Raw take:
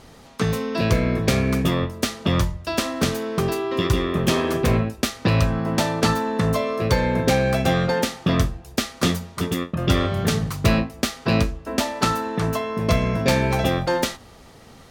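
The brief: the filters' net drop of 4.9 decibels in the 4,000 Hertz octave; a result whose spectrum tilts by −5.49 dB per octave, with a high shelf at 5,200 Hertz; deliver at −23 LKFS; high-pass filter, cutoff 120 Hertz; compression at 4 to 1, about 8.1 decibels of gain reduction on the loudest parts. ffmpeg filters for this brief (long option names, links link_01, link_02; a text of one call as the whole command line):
ffmpeg -i in.wav -af "highpass=120,equalizer=frequency=4000:width_type=o:gain=-7.5,highshelf=frequency=5200:gain=3,acompressor=threshold=-26dB:ratio=4,volume=7dB" out.wav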